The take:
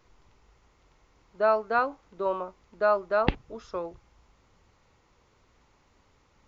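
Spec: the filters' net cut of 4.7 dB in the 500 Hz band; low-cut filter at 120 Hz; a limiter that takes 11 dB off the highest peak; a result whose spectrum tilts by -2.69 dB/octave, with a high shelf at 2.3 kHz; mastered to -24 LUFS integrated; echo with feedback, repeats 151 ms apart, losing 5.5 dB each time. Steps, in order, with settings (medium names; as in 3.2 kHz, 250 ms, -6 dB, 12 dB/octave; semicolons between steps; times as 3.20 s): high-pass 120 Hz; peaking EQ 500 Hz -7 dB; treble shelf 2.3 kHz +3.5 dB; peak limiter -19.5 dBFS; feedback delay 151 ms, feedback 53%, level -5.5 dB; trim +9 dB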